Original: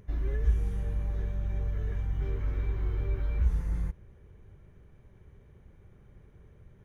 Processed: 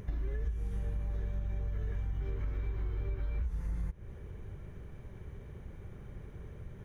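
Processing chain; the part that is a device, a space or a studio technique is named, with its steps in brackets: serial compression, peaks first (compression, threshold -36 dBFS, peak gain reduction 16 dB; compression 1.5:1, threshold -47 dBFS, peak gain reduction 5 dB); trim +8.5 dB

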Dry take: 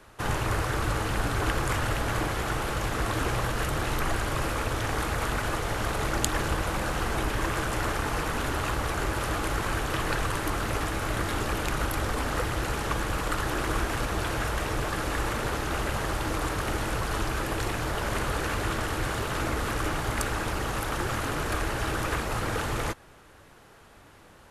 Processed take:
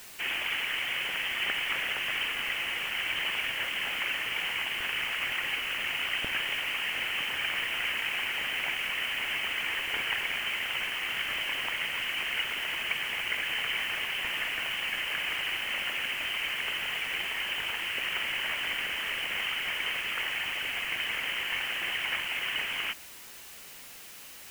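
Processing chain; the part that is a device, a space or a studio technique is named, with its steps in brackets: scrambled radio voice (band-pass 330–2800 Hz; frequency inversion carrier 3.4 kHz; white noise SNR 15 dB)

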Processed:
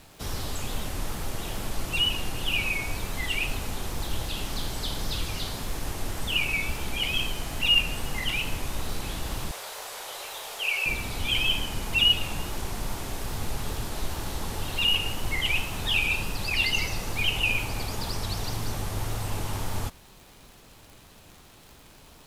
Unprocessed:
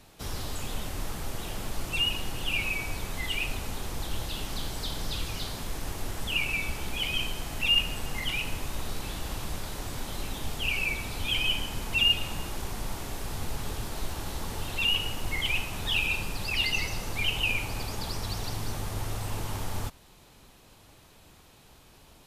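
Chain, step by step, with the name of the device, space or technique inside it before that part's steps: 9.51–10.86 s: steep high-pass 450 Hz 36 dB/octave; vinyl LP (wow and flutter; crackle 74 per s -42 dBFS; pink noise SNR 31 dB); trim +2.5 dB

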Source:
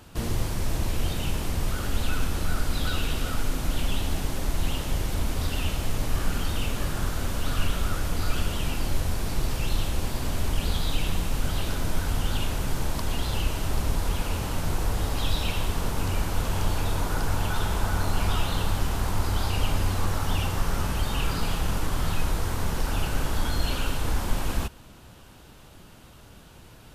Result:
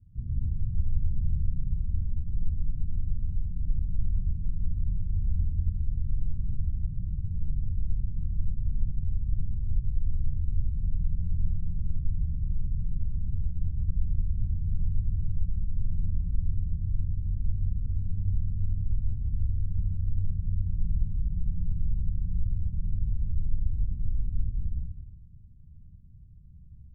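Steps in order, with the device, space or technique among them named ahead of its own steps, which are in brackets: club heard from the street (peak limiter -19 dBFS, peak gain reduction 8 dB; low-pass 150 Hz 24 dB/octave; reverberation RT60 1.1 s, pre-delay 98 ms, DRR -1.5 dB); trim -2.5 dB

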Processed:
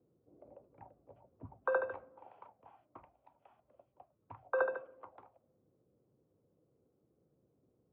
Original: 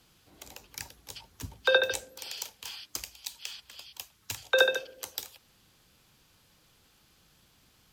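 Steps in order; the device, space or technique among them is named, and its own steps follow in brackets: envelope filter bass rig (touch-sensitive low-pass 440–1100 Hz up, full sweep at -33.5 dBFS; cabinet simulation 78–2200 Hz, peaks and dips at 83 Hz -7 dB, 190 Hz -4 dB, 450 Hz -6 dB, 860 Hz -5 dB, 1.7 kHz -8 dB); trim -6.5 dB

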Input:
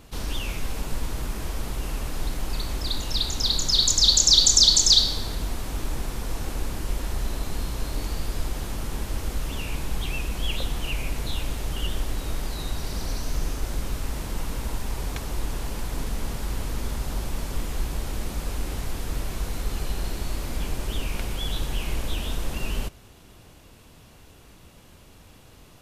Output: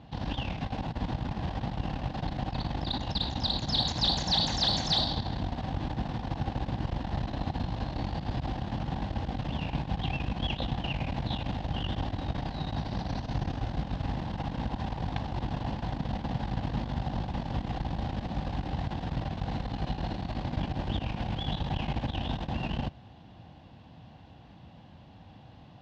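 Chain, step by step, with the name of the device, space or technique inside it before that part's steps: guitar amplifier (valve stage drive 20 dB, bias 0.8; tone controls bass +8 dB, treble -6 dB; cabinet simulation 110–4300 Hz, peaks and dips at 410 Hz -10 dB, 780 Hz +9 dB, 1.3 kHz -8 dB, 2.3 kHz -7 dB); trim +3.5 dB

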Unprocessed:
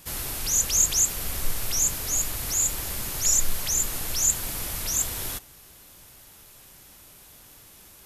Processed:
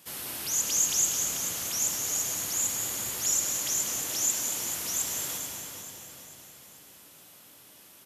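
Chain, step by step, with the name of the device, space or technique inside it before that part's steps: 4.03–4.59 s: steep high-pass 210 Hz 48 dB/octave; stadium PA (high-pass 170 Hz 12 dB/octave; peaking EQ 3.1 kHz +3 dB 0.28 oct; loudspeakers at several distances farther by 65 m -9 dB, 78 m -10 dB; reverberation RT60 3.7 s, pre-delay 37 ms, DRR 3 dB); feedback delay 438 ms, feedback 47%, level -10 dB; trim -5.5 dB

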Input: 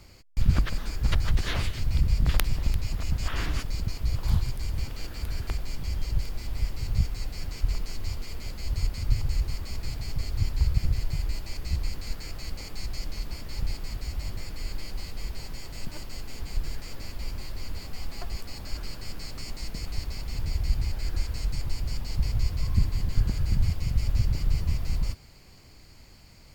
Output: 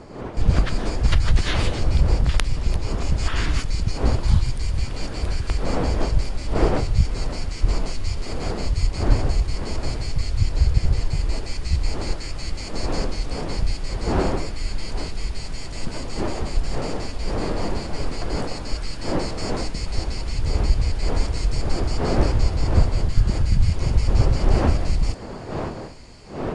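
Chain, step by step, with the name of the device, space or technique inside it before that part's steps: smartphone video outdoors (wind noise 540 Hz -37 dBFS; level rider gain up to 7 dB; AAC 48 kbps 22.05 kHz)

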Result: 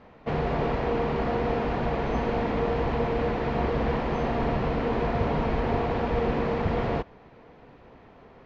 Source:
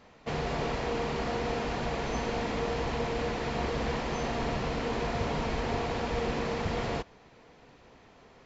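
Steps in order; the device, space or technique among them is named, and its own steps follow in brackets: phone in a pocket (low-pass 3.8 kHz 12 dB/octave; treble shelf 2.2 kHz -10 dB); trim +6 dB

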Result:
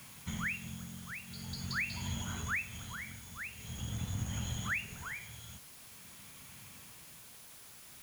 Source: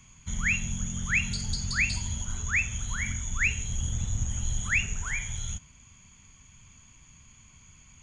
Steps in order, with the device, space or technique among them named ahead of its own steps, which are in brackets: medium wave at night (band-pass 130–3600 Hz; compression, threshold -35 dBFS, peak gain reduction 12 dB; tremolo 0.46 Hz, depth 74%; whistle 10 kHz -64 dBFS; white noise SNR 13 dB); trim +3.5 dB

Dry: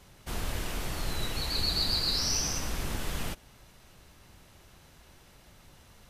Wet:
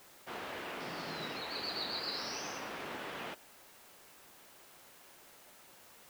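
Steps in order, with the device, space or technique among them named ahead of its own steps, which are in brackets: wax cylinder (band-pass 360–2700 Hz; wow and flutter; white noise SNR 16 dB); 0.80–1.38 s: graphic EQ with 31 bands 160 Hz +11 dB, 250 Hz +7 dB, 5 kHz +9 dB; trim -1 dB

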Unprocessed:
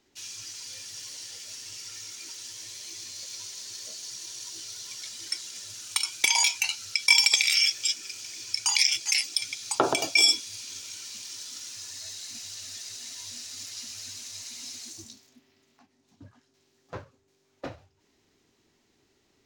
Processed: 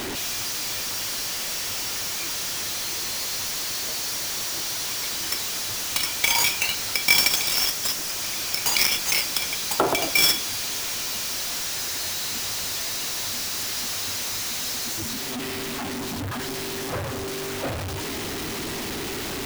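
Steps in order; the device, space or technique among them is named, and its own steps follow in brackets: 7.31–8.22 s: peaking EQ 1.8 kHz -15 dB 1.3 oct; early CD player with a faulty converter (jump at every zero crossing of -24 dBFS; sampling jitter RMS 0.024 ms)

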